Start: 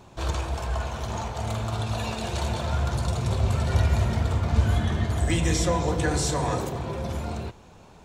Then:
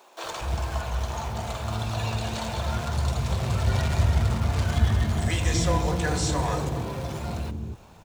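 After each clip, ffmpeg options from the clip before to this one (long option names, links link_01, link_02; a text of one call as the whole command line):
ffmpeg -i in.wav -filter_complex "[0:a]acrusher=bits=4:mode=log:mix=0:aa=0.000001,acrossover=split=380[link_01][link_02];[link_01]adelay=240[link_03];[link_03][link_02]amix=inputs=2:normalize=0,acrossover=split=9000[link_04][link_05];[link_05]acompressor=threshold=-52dB:ratio=4:attack=1:release=60[link_06];[link_04][link_06]amix=inputs=2:normalize=0" out.wav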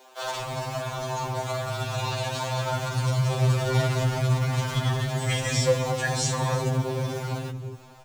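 ffmpeg -i in.wav -af "afftfilt=real='re*2.45*eq(mod(b,6),0)':imag='im*2.45*eq(mod(b,6),0)':win_size=2048:overlap=0.75,volume=4.5dB" out.wav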